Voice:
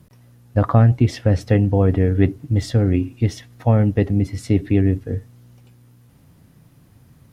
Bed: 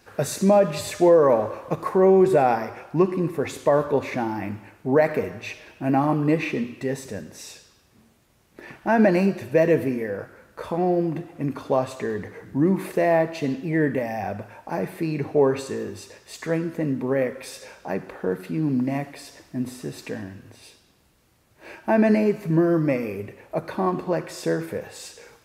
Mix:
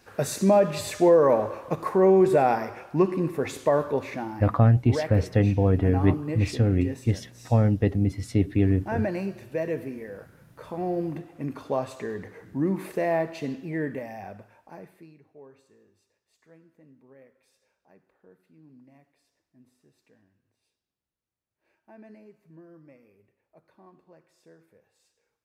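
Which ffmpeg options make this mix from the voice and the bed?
-filter_complex "[0:a]adelay=3850,volume=-5dB[a];[1:a]volume=3dB,afade=t=out:st=3.58:d=0.94:silence=0.375837,afade=t=in:st=10.57:d=0.48:silence=0.562341,afade=t=out:st=13.32:d=1.88:silence=0.0562341[b];[a][b]amix=inputs=2:normalize=0"

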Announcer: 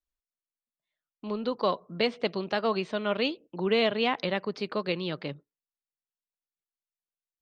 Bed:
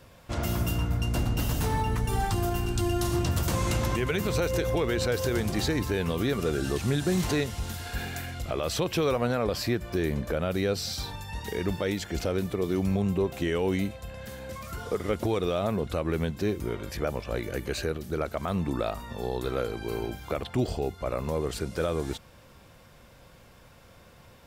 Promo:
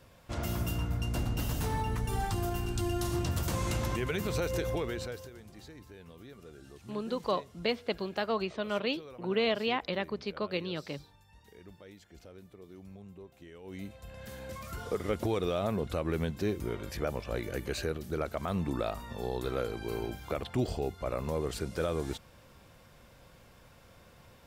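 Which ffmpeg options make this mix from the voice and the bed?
-filter_complex "[0:a]adelay=5650,volume=-4dB[a];[1:a]volume=14.5dB,afade=t=out:st=4.67:d=0.64:silence=0.125893,afade=t=in:st=13.63:d=0.75:silence=0.105925[b];[a][b]amix=inputs=2:normalize=0"

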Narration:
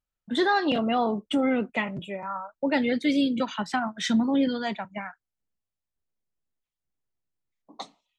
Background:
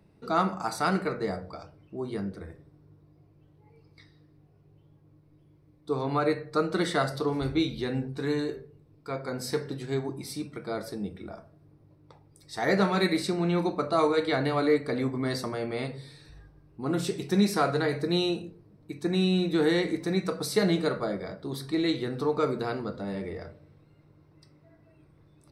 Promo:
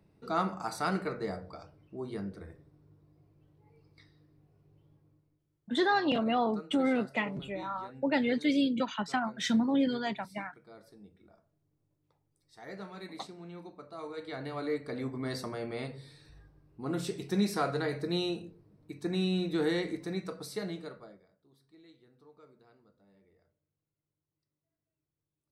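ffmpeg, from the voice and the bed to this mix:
-filter_complex "[0:a]adelay=5400,volume=-4dB[a];[1:a]volume=9.5dB,afade=t=out:st=4.94:d=0.47:silence=0.177828,afade=t=in:st=13.97:d=1.44:silence=0.188365,afade=t=out:st=19.68:d=1.59:silence=0.0501187[b];[a][b]amix=inputs=2:normalize=0"

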